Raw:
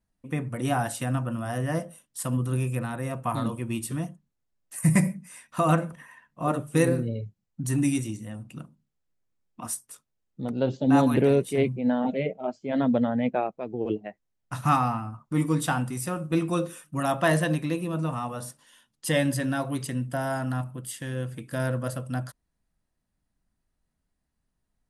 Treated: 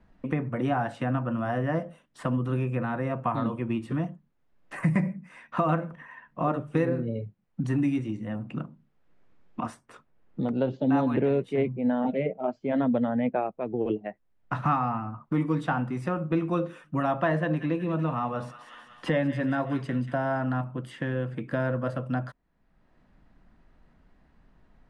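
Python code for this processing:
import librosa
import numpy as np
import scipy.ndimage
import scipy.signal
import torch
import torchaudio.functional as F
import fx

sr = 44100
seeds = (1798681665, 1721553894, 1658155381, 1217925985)

y = fx.echo_wet_highpass(x, sr, ms=185, feedback_pct=45, hz=1800.0, wet_db=-9.5, at=(17.38, 20.15))
y = scipy.signal.sosfilt(scipy.signal.butter(2, 2200.0, 'lowpass', fs=sr, output='sos'), y)
y = fx.peak_eq(y, sr, hz=90.0, db=-4.5, octaves=1.3)
y = fx.band_squash(y, sr, depth_pct=70)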